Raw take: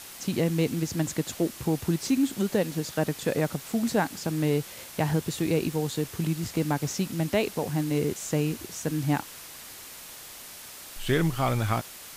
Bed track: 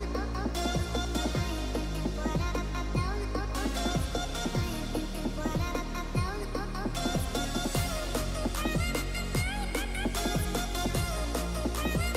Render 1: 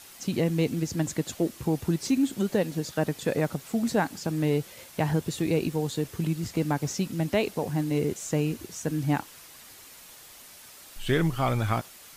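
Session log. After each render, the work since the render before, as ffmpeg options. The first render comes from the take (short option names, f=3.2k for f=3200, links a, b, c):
-af "afftdn=nr=6:nf=-44"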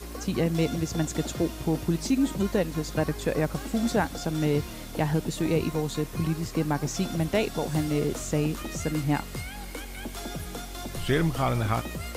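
-filter_complex "[1:a]volume=-6dB[a];[0:a][a]amix=inputs=2:normalize=0"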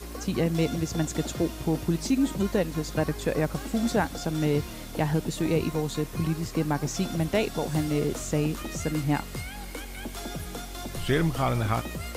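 -af anull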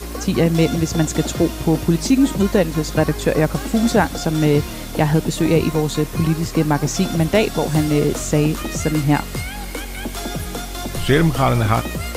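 -af "volume=9.5dB"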